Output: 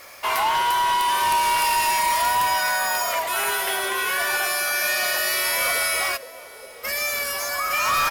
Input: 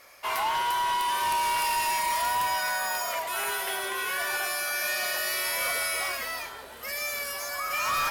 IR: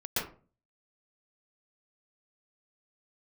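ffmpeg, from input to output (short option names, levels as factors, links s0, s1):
-filter_complex "[0:a]asplit=2[s0][s1];[s1]acompressor=threshold=0.0141:ratio=6,volume=0.708[s2];[s0][s2]amix=inputs=2:normalize=0,asplit=3[s3][s4][s5];[s3]afade=t=out:st=6.16:d=0.02[s6];[s4]bandpass=f=510:t=q:w=4.7:csg=0,afade=t=in:st=6.16:d=0.02,afade=t=out:st=6.83:d=0.02[s7];[s5]afade=t=in:st=6.83:d=0.02[s8];[s6][s7][s8]amix=inputs=3:normalize=0,acrusher=bits=8:mix=0:aa=0.000001,aecho=1:1:757:0.0841,volume=1.68"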